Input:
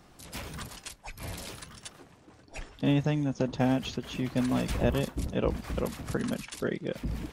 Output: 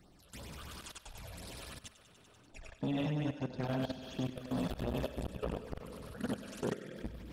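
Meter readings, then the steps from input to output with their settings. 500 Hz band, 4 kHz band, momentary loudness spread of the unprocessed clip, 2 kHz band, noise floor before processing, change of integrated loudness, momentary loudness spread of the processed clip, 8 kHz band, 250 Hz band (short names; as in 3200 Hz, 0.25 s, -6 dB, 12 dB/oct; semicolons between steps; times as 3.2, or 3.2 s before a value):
-8.0 dB, -7.5 dB, 16 LU, -9.0 dB, -57 dBFS, -8.5 dB, 14 LU, -9.0 dB, -8.5 dB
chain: spring tank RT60 1.3 s, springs 46/53 ms, chirp 55 ms, DRR 5.5 dB; phaser stages 8, 2.9 Hz, lowest notch 250–2400 Hz; on a send: thinning echo 97 ms, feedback 69%, high-pass 260 Hz, level -3 dB; on the sum: level quantiser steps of 15 dB; core saturation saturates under 510 Hz; gain -2 dB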